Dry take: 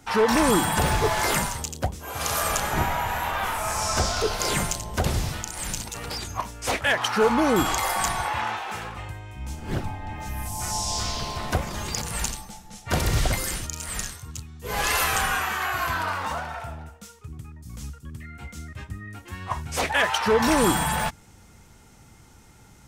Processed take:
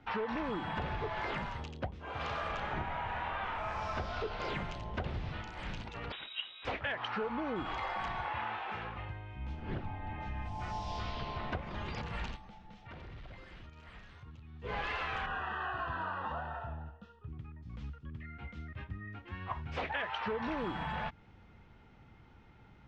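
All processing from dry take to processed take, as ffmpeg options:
ffmpeg -i in.wav -filter_complex "[0:a]asettb=1/sr,asplit=3[link_01][link_02][link_03];[link_01]atrim=end=6.124[link_04];[link_02]atrim=start=6.12:end=6.65,asetpts=PTS-STARTPTS,afade=type=in:duration=0.004:curve=qsin,afade=type=out:start_time=0.526:duration=0.004:curve=qsin,bandreject=frequency=2100:width=28,lowpass=frequency=3300:width_type=q:width=0.5098,lowpass=frequency=3300:width_type=q:width=0.6013,lowpass=frequency=3300:width_type=q:width=0.9,lowpass=frequency=3300:width_type=q:width=2.563,afreqshift=-3900[link_05];[link_03]atrim=start=6.646[link_06];[link_04][link_05]acrossfade=duration=0.004:curve1=hsin:curve2=qsin[link_07];[link_07][link_06]acrossfade=duration=0.004:curve1=qsin:curve2=hsin,asettb=1/sr,asplit=3[link_08][link_09][link_10];[link_08]atrim=end=12.364[link_11];[link_09]atrim=start=12.36:end=14.54,asetpts=PTS-STARTPTS,afade=type=in:duration=0.004:curve=qsin,afade=type=out:start_time=2.176:duration=0.004:curve=qsin,acompressor=threshold=-40dB:ratio=4:attack=3.2:release=140:knee=1:detection=peak,asoftclip=type=hard:threshold=-37dB[link_12];[link_10]atrim=start=14.536[link_13];[link_11][link_12]acrossfade=duration=0.004:curve1=hsin:curve2=qsin[link_14];[link_14][link_13]acrossfade=duration=0.004:curve1=qsin:curve2=hsin,asettb=1/sr,asplit=3[link_15][link_16][link_17];[link_15]atrim=end=15.264[link_18];[link_16]atrim=start=15.26:end=17.29,asetpts=PTS-STARTPTS,afade=type=in:duration=0.004:curve=qsin,afade=type=out:start_time=2.026:duration=0.004:curve=qsin,asuperstop=centerf=2200:order=8:qfactor=4.1,aemphasis=mode=reproduction:type=75kf,asplit=2[link_19][link_20];[link_20]adelay=27,volume=-11dB[link_21];[link_19][link_21]amix=inputs=2:normalize=0,atrim=end_sample=89523[link_22];[link_17]atrim=start=17.286[link_23];[link_18][link_22]acrossfade=duration=0.004:curve1=hsin:curve2=qsin[link_24];[link_24][link_23]acrossfade=duration=0.004:curve1=qsin:curve2=hsin,lowpass=frequency=3300:width=0.5412,lowpass=frequency=3300:width=1.3066,acompressor=threshold=-27dB:ratio=6,volume=-6.5dB" out.wav

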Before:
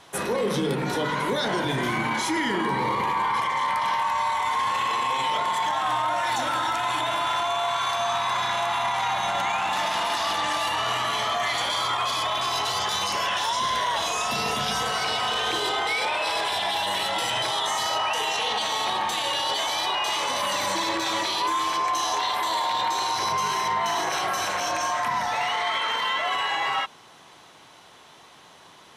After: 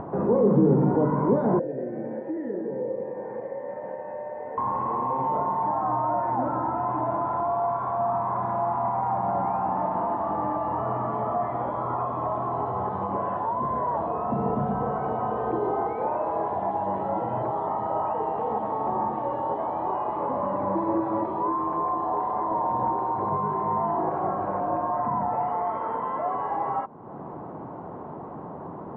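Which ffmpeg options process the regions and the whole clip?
ffmpeg -i in.wav -filter_complex "[0:a]asettb=1/sr,asplit=3[link_01][link_02][link_03];[link_01]atrim=end=1.594[link_04];[link_02]atrim=start=1.59:end=4.58,asetpts=PTS-STARTPTS,afade=type=in:duration=0.004:curve=qsin,afade=type=out:start_time=2.986:duration=0.004:curve=qsin,asplit=3[link_05][link_06][link_07];[link_05]bandpass=frequency=530:width_type=q:width=8,volume=0dB[link_08];[link_06]bandpass=frequency=1840:width_type=q:width=8,volume=-6dB[link_09];[link_07]bandpass=frequency=2480:width_type=q:width=8,volume=-9dB[link_10];[link_08][link_09][link_10]amix=inputs=3:normalize=0,lowshelf=frequency=370:gain=8,aeval=exprs='val(0)+0.00708*sin(2*PI*1800*n/s)':channel_layout=same[link_11];[link_03]atrim=start=4.576[link_12];[link_04][link_11]acrossfade=duration=0.004:curve1=hsin:curve2=qsin[link_13];[link_13][link_12]acrossfade=duration=0.004:curve1=qsin:curve2=hsin,asettb=1/sr,asplit=3[link_14][link_15][link_16];[link_14]atrim=end=22.514[link_17];[link_15]atrim=start=22.51:end=22.97,asetpts=PTS-STARTPTS,afade=type=in:duration=0.004:curve=qsin,afade=type=out:start_time=0.456:duration=0.004:curve=qsin,lowpass=11000,lowshelf=frequency=190:gain=8[link_18];[link_16]atrim=start=22.966[link_19];[link_17][link_18]acrossfade=duration=0.004:curve1=hsin:curve2=qsin[link_20];[link_20][link_19]acrossfade=duration=0.004:curve1=qsin:curve2=hsin,lowpass=frequency=1000:width=0.5412,lowpass=frequency=1000:width=1.3066,equalizer=frequency=200:width=0.49:gain=9,acompressor=mode=upward:threshold=-25dB:ratio=2.5" out.wav

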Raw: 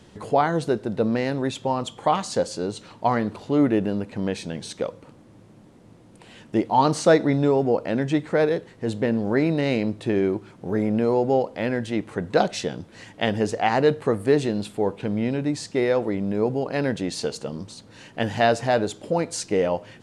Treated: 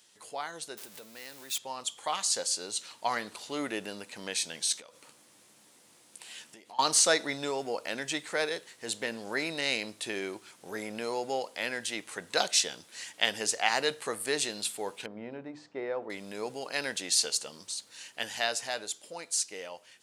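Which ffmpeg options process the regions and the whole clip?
ffmpeg -i in.wav -filter_complex "[0:a]asettb=1/sr,asplit=3[link_01][link_02][link_03];[link_01]atrim=end=0.774[link_04];[link_02]atrim=start=0.77:end=1.58,asetpts=PTS-STARTPTS,afade=type=in:duration=0.004:curve=qsin,afade=type=out:start_time=0.806:duration=0.004:curve=qsin,aeval=exprs='val(0)+0.5*0.0251*sgn(val(0))':channel_layout=same,acompressor=threshold=-27dB:ratio=3:attack=3.2:release=140:knee=1:detection=peak[link_05];[link_03]atrim=start=1.576[link_06];[link_04][link_05]acrossfade=duration=0.004:curve1=hsin:curve2=qsin[link_07];[link_07][link_06]acrossfade=duration=0.004:curve1=qsin:curve2=hsin,asettb=1/sr,asplit=3[link_08][link_09][link_10];[link_08]atrim=end=4.724[link_11];[link_09]atrim=start=4.72:end=6.79,asetpts=PTS-STARTPTS,afade=type=in:duration=0.004:curve=qsin,afade=type=out:start_time=2.066:duration=0.004:curve=qsin,acompressor=threshold=-36dB:ratio=10:attack=3.2:release=140:knee=1:detection=peak,asplit=2[link_12][link_13];[link_13]adelay=14,volume=-10.5dB[link_14];[link_12][link_14]amix=inputs=2:normalize=0,atrim=end_sample=91287[link_15];[link_10]atrim=start=6.786[link_16];[link_11][link_15]acrossfade=duration=0.004:curve1=hsin:curve2=qsin[link_17];[link_17][link_16]acrossfade=duration=0.004:curve1=qsin:curve2=hsin,asettb=1/sr,asplit=3[link_18][link_19][link_20];[link_18]atrim=end=15.064[link_21];[link_19]atrim=start=15.06:end=16.1,asetpts=PTS-STARTPTS,afade=type=in:duration=0.004:curve=qsin,afade=type=out:start_time=1.036:duration=0.004:curve=qsin,lowpass=1000,bandreject=frequency=50:width_type=h:width=6,bandreject=frequency=100:width_type=h:width=6,bandreject=frequency=150:width_type=h:width=6,bandreject=frequency=200:width_type=h:width=6,bandreject=frequency=250:width_type=h:width=6,bandreject=frequency=300:width_type=h:width=6,bandreject=frequency=350:width_type=h:width=6[link_22];[link_20]atrim=start=16.096[link_23];[link_21][link_22]acrossfade=duration=0.004:curve1=hsin:curve2=qsin[link_24];[link_24][link_23]acrossfade=duration=0.004:curve1=qsin:curve2=hsin,aderivative,dynaudnorm=framelen=210:gausssize=21:maxgain=9dB,volume=1.5dB" out.wav

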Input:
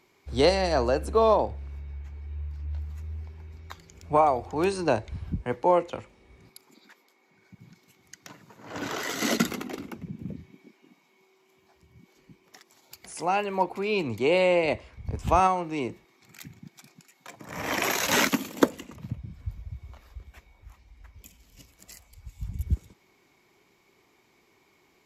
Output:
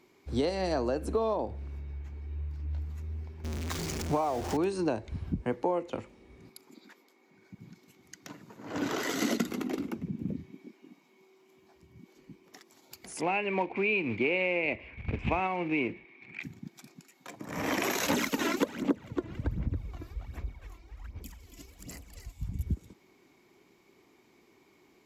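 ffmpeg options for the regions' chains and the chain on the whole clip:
ffmpeg -i in.wav -filter_complex "[0:a]asettb=1/sr,asplit=3[link_01][link_02][link_03];[link_01]atrim=end=3.444[link_04];[link_02]atrim=start=3.44:end=4.57,asetpts=PTS-STARTPTS,afade=type=in:duration=0.004:curve=qsin,afade=type=out:start_time=1.126:duration=0.004:curve=qsin,aeval=exprs='val(0)+0.5*0.0299*sgn(val(0))':channel_layout=same,equalizer=frequency=6100:width_type=o:width=0.8:gain=6[link_05];[link_03]atrim=start=4.566[link_06];[link_04][link_05]acrossfade=duration=0.004:curve1=hsin:curve2=qsin[link_07];[link_07][link_06]acrossfade=duration=0.004:curve1=qsin:curve2=hsin,asettb=1/sr,asplit=3[link_08][link_09][link_10];[link_08]atrim=end=13.214[link_11];[link_09]atrim=start=13.21:end=16.43,asetpts=PTS-STARTPTS,afade=type=in:duration=0.004:curve=qsin,afade=type=out:start_time=3.216:duration=0.004:curve=qsin,equalizer=frequency=1300:width_type=o:width=0.36:gain=-6,acrusher=bits=4:mode=log:mix=0:aa=0.000001,lowpass=frequency=2400:width_type=q:width=6.2[link_12];[link_10]atrim=start=16.426[link_13];[link_11][link_12]acrossfade=duration=0.004:curve1=hsin:curve2=qsin[link_14];[link_14][link_13]acrossfade=duration=0.004:curve1=qsin:curve2=hsin,asettb=1/sr,asplit=3[link_15][link_16][link_17];[link_15]atrim=end=18.104[link_18];[link_16]atrim=start=18.1:end=22.32,asetpts=PTS-STARTPTS,afade=type=in:duration=0.004:curve=qsin,afade=type=out:start_time=4.216:duration=0.004:curve=qsin,asplit=2[link_19][link_20];[link_20]adelay=277,lowpass=frequency=4000:poles=1,volume=-3.5dB,asplit=2[link_21][link_22];[link_22]adelay=277,lowpass=frequency=4000:poles=1,volume=0.41,asplit=2[link_23][link_24];[link_24]adelay=277,lowpass=frequency=4000:poles=1,volume=0.41,asplit=2[link_25][link_26];[link_26]adelay=277,lowpass=frequency=4000:poles=1,volume=0.41,asplit=2[link_27][link_28];[link_28]adelay=277,lowpass=frequency=4000:poles=1,volume=0.41[link_29];[link_19][link_21][link_23][link_25][link_27][link_29]amix=inputs=6:normalize=0,atrim=end_sample=186102,aphaser=in_gain=1:out_gain=1:delay=3:decay=0.65:speed=1.3:type=sinusoidal[link_30];[link_17]atrim=start=22.316[link_31];[link_18][link_30]acrossfade=duration=0.004:curve1=hsin:curve2=qsin[link_32];[link_32][link_31]acrossfade=duration=0.004:curve1=qsin:curve2=hsin,equalizer=frequency=280:width=1:gain=7.5,acompressor=threshold=-24dB:ratio=6,volume=-2dB" out.wav

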